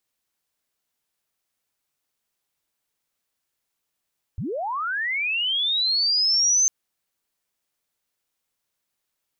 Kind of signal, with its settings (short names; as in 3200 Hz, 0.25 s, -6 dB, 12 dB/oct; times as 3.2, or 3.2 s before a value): chirp linear 68 Hz -> 6300 Hz -26 dBFS -> -15.5 dBFS 2.30 s